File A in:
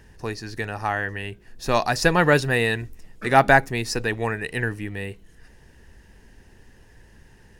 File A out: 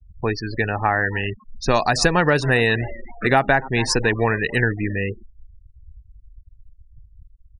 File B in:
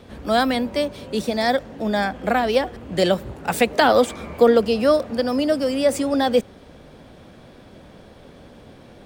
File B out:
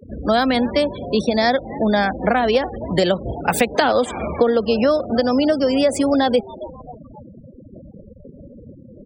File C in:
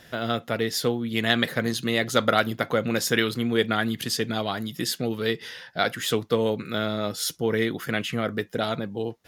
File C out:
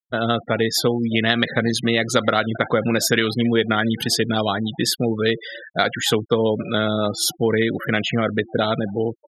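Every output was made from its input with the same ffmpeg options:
ffmpeg -i in.wav -filter_complex "[0:a]asplit=4[link_01][link_02][link_03][link_04];[link_02]adelay=268,afreqshift=120,volume=-22dB[link_05];[link_03]adelay=536,afreqshift=240,volume=-28.2dB[link_06];[link_04]adelay=804,afreqshift=360,volume=-34.4dB[link_07];[link_01][link_05][link_06][link_07]amix=inputs=4:normalize=0,afftfilt=real='re*gte(hypot(re,im),0.0251)':imag='im*gte(hypot(re,im),0.0251)':win_size=1024:overlap=0.75,acompressor=threshold=-21dB:ratio=6,volume=7.5dB" out.wav

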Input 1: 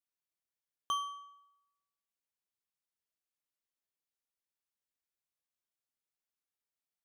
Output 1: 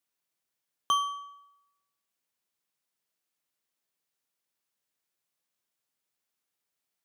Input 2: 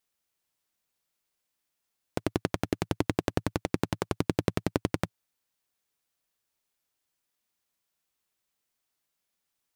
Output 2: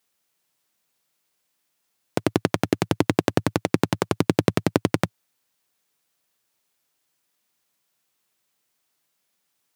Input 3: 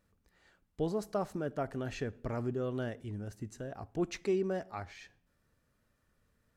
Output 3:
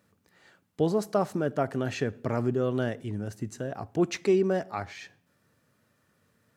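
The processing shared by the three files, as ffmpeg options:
ffmpeg -i in.wav -af "highpass=frequency=100:width=0.5412,highpass=frequency=100:width=1.3066,volume=8dB" out.wav

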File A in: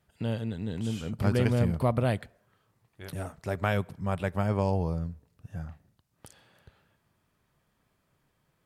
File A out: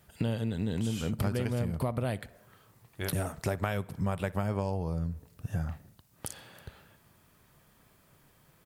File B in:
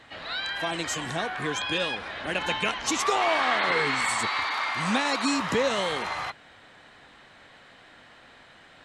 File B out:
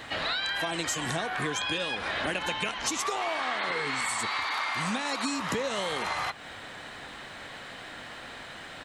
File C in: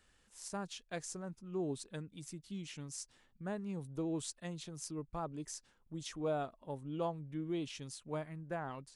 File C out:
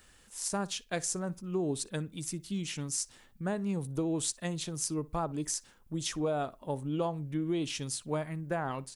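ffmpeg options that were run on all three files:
ffmpeg -i in.wav -filter_complex "[0:a]highshelf=frequency=9400:gain=10,acompressor=threshold=-36dB:ratio=16,asplit=2[link_01][link_02];[link_02]adelay=60,lowpass=frequency=3700:poles=1,volume=-21dB,asplit=2[link_03][link_04];[link_04]adelay=60,lowpass=frequency=3700:poles=1,volume=0.25[link_05];[link_03][link_05]amix=inputs=2:normalize=0[link_06];[link_01][link_06]amix=inputs=2:normalize=0,volume=9dB" out.wav

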